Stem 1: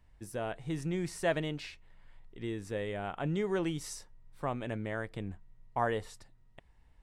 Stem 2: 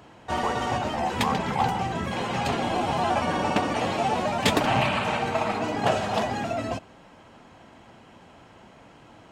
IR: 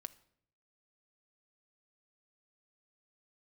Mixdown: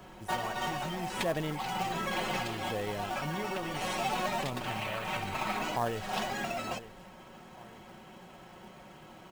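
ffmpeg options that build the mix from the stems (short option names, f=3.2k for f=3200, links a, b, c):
-filter_complex "[0:a]aphaser=in_gain=1:out_gain=1:delay=1.6:decay=0.47:speed=0.7:type=sinusoidal,volume=-5dB,asplit=3[a][b][c];[b]volume=-14.5dB[d];[1:a]acrossover=split=320|1200[e][f][g];[e]acompressor=threshold=-42dB:ratio=4[h];[f]acompressor=threshold=-35dB:ratio=4[i];[g]acompressor=threshold=-32dB:ratio=4[j];[h][i][j]amix=inputs=3:normalize=0,aecho=1:1:5.4:0.64,volume=-3dB,asplit=2[k][l];[l]volume=-14.5dB[m];[c]apad=whole_len=411122[n];[k][n]sidechaincompress=threshold=-43dB:ratio=8:attack=11:release=226[o];[2:a]atrim=start_sample=2205[p];[m][p]afir=irnorm=-1:irlink=0[q];[d]aecho=0:1:903|1806|2709|3612|4515:1|0.38|0.144|0.0549|0.0209[r];[a][o][q][r]amix=inputs=4:normalize=0,acrusher=bits=4:mode=log:mix=0:aa=0.000001"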